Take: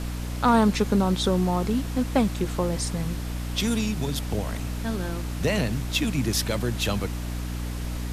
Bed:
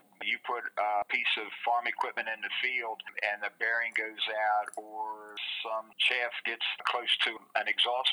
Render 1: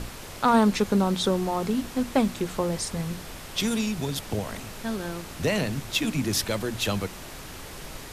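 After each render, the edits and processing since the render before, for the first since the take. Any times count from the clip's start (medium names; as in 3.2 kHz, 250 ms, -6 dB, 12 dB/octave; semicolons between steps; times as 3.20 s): hum notches 60/120/180/240/300 Hz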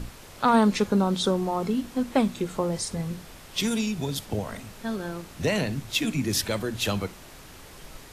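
noise print and reduce 6 dB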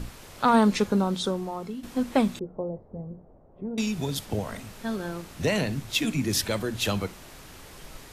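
0.78–1.83 s: fade out, to -11.5 dB; 2.39–3.78 s: four-pole ladder low-pass 780 Hz, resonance 35%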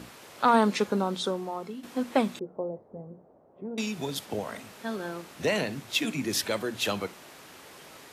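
high-pass 130 Hz 12 dB/octave; tone controls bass -7 dB, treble -3 dB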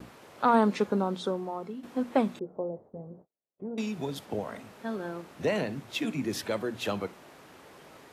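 gate -51 dBFS, range -41 dB; treble shelf 2.1 kHz -10 dB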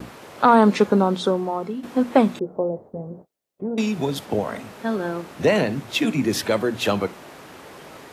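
trim +10 dB; peak limiter -3 dBFS, peak gain reduction 3 dB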